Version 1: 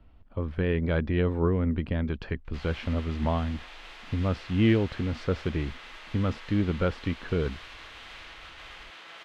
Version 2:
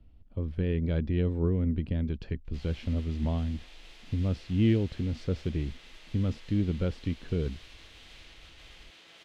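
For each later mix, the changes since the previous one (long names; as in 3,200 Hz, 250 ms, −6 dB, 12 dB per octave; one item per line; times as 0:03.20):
master: add parametric band 1,200 Hz −14.5 dB 2.2 octaves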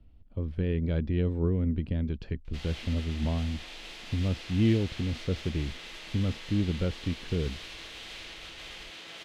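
background +9.5 dB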